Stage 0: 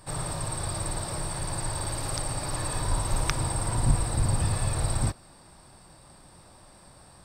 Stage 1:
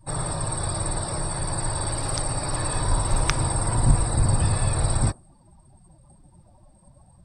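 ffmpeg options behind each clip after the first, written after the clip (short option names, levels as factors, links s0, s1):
-af "afftdn=nr=22:nf=-46,volume=1.68"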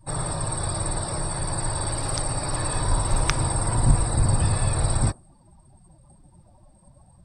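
-af anull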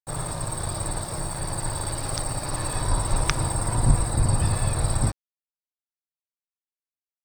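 -af "aeval=exprs='sgn(val(0))*max(abs(val(0))-0.0141,0)':c=same"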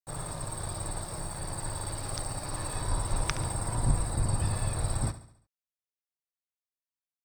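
-af "aecho=1:1:70|140|210|280|350:0.2|0.0958|0.046|0.0221|0.0106,volume=0.447"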